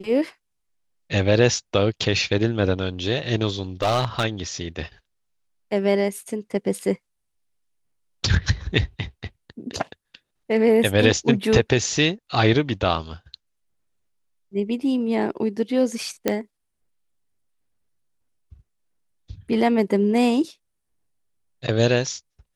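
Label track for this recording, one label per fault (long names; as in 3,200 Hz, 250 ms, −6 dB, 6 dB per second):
3.820000	4.250000	clipping −15.5 dBFS
16.280000	16.280000	click −6 dBFS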